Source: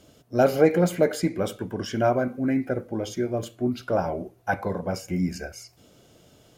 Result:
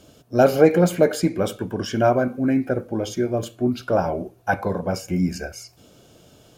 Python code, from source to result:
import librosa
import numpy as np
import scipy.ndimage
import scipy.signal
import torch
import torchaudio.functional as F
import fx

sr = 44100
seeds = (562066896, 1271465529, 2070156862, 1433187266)

y = fx.notch(x, sr, hz=2000.0, q=11.0)
y = y * librosa.db_to_amplitude(4.0)